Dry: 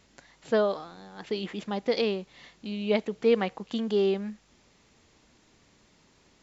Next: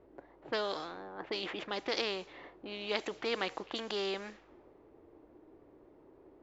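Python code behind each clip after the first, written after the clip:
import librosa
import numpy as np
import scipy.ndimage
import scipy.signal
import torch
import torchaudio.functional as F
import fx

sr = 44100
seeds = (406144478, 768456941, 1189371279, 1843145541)

y = fx.env_lowpass(x, sr, base_hz=640.0, full_db=-24.5)
y = fx.low_shelf_res(y, sr, hz=260.0, db=-7.5, q=3.0)
y = fx.spectral_comp(y, sr, ratio=2.0)
y = y * librosa.db_to_amplitude(-5.0)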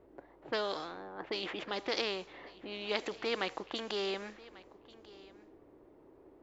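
y = x + 10.0 ** (-20.5 / 20.0) * np.pad(x, (int(1142 * sr / 1000.0), 0))[:len(x)]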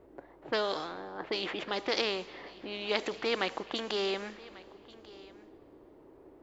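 y = fx.rev_plate(x, sr, seeds[0], rt60_s=3.3, hf_ratio=0.85, predelay_ms=0, drr_db=18.0)
y = y * librosa.db_to_amplitude(3.5)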